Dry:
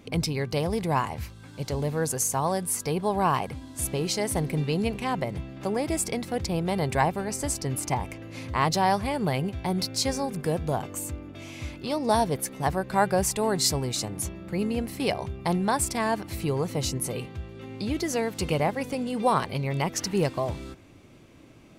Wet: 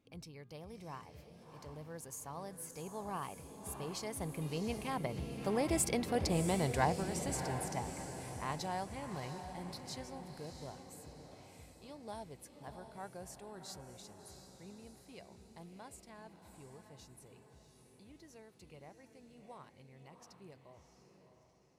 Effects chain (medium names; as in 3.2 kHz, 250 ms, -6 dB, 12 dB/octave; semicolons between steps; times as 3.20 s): Doppler pass-by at 6.02 s, 12 m/s, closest 7.9 m; echo that smears into a reverb 683 ms, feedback 46%, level -8 dB; trim -4.5 dB